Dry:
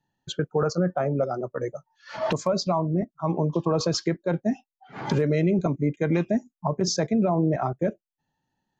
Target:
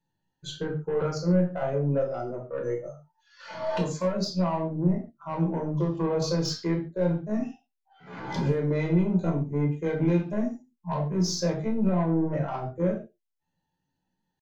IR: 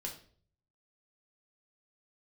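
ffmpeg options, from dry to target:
-filter_complex "[0:a]atempo=0.61,aeval=exprs='0.282*(cos(1*acos(clip(val(0)/0.282,-1,1)))-cos(1*PI/2))+0.0251*(cos(5*acos(clip(val(0)/0.282,-1,1)))-cos(5*PI/2))+0.00447*(cos(8*acos(clip(val(0)/0.282,-1,1)))-cos(8*PI/2))':channel_layout=same[link_01];[1:a]atrim=start_sample=2205,atrim=end_sample=6615[link_02];[link_01][link_02]afir=irnorm=-1:irlink=0,volume=-4.5dB"

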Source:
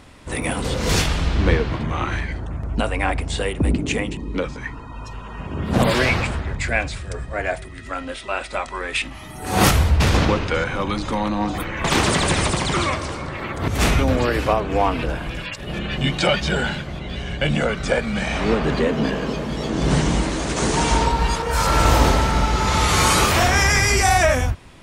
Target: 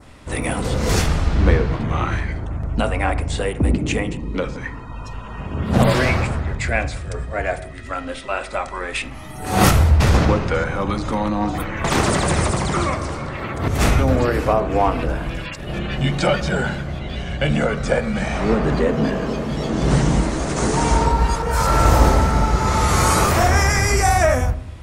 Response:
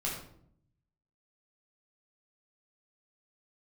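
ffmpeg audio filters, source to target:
-filter_complex "[0:a]adynamicequalizer=threshold=0.0126:dfrequency=3200:dqfactor=1.2:tfrequency=3200:tqfactor=1.2:attack=5:release=100:ratio=0.375:range=4:mode=cutabove:tftype=bell,asplit=2[link_01][link_02];[1:a]atrim=start_sample=2205,lowpass=2200[link_03];[link_02][link_03]afir=irnorm=-1:irlink=0,volume=-12.5dB[link_04];[link_01][link_04]amix=inputs=2:normalize=0"

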